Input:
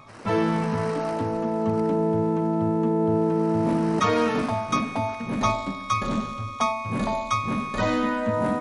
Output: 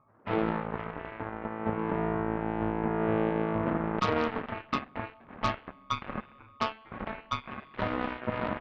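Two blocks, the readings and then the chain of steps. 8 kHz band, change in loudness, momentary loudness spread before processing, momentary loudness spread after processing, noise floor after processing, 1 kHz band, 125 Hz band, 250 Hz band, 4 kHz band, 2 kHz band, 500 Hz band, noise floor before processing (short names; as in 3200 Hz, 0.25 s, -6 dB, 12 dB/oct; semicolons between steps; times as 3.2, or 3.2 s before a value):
under -15 dB, -8.0 dB, 5 LU, 11 LU, -56 dBFS, -7.0 dB, -8.5 dB, -9.0 dB, -6.5 dB, -5.0 dB, -8.0 dB, -36 dBFS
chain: inverse Chebyshev low-pass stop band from 8000 Hz, stop band 80 dB; added harmonics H 7 -15 dB, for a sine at -10 dBFS; gain -5 dB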